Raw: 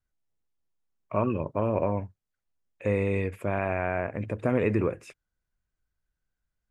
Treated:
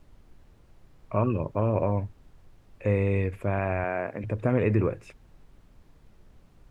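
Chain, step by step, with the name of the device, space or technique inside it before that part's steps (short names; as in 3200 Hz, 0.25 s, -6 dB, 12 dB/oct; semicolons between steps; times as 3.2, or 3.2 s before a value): car interior (bell 110 Hz +5.5 dB; high shelf 4900 Hz -7 dB; brown noise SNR 23 dB); 3.84–4.24 HPF 200 Hz 12 dB/oct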